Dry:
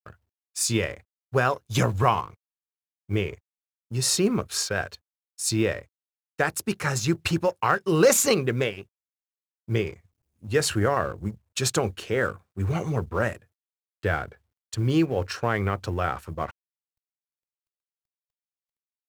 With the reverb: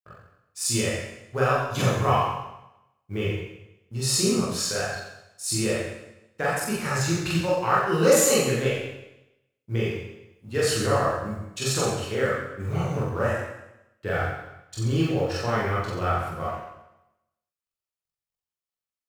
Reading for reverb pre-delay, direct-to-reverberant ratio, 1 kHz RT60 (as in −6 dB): 22 ms, −7.5 dB, 0.90 s